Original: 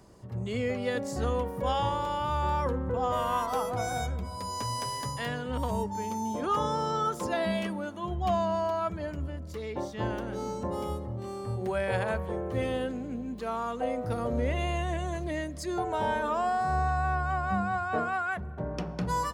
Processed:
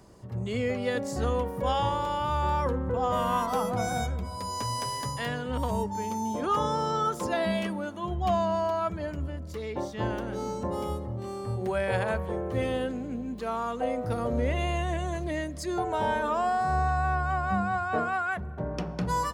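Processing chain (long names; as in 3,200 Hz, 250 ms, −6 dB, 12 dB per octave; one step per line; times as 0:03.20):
0:03.12–0:04.04: parametric band 200 Hz +13 dB 0.37 octaves
level +1.5 dB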